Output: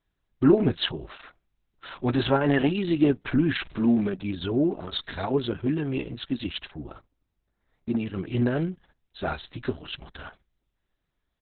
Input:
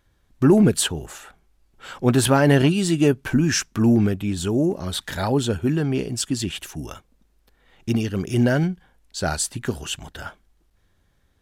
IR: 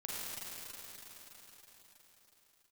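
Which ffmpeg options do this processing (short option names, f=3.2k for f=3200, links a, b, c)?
-filter_complex "[0:a]asettb=1/sr,asplit=3[a][b][c];[a]atrim=end=3.514[d];[b]atrim=start=3.51:end=4.02,asetpts=PTS-STARTPTS,afade=t=in:d=0.004:c=qsin,afade=t=out:st=0.506:d=0.004:c=qsin,aeval=exprs='val(0)+0.5*0.015*sgn(val(0))':c=same[e];[c]atrim=start=4.016[f];[d][e]acrossfade=d=0.004:c1=hsin:c2=qsin[g];[g][f]acrossfade=d=0.004:c1=qsin:c2=hsin,agate=range=-12dB:threshold=-48dB:ratio=16:detection=peak,asettb=1/sr,asplit=3[h][i][j];[h]atrim=end=6.704[k];[i]atrim=start=6.7:end=8,asetpts=PTS-STARTPTS,afade=t=in:d=0.004:c=qsin,afade=t=out:st=1.296:d=0.004:c=qsin,equalizer=f=3k:w=1.6:g=-12.5[l];[j]atrim=start=7.996[m];[k][l]acrossfade=d=0.004:c1=hsin:c2=qsin[n];[n][m]acrossfade=d=0.004:c1=qsin:c2=hsin,aecho=1:1:3:0.33,flanger=delay=3.9:depth=3.6:regen=-44:speed=0.77:shape=triangular,asettb=1/sr,asplit=3[o][p][q];[o]atrim=end=2.114[r];[p]atrim=start=2.11:end=2.8,asetpts=PTS-STARTPTS,afade=t=in:d=0.004:c=qsin,afade=t=out:st=0.686:d=0.004:c=qsin,adynamicequalizer=threshold=0.00794:dfrequency=810:dqfactor=4.4:tfrequency=810:tqfactor=4.4:attack=5:release=100:ratio=0.375:range=2:mode=boostabove:tftype=bell[s];[q]atrim=start=2.796[t];[r][s]acrossfade=d=0.004:c1=hsin:c2=qsin[u];[u][t]acrossfade=d=0.004:c1=qsin:c2=hsin" -ar 48000 -c:a libopus -b:a 6k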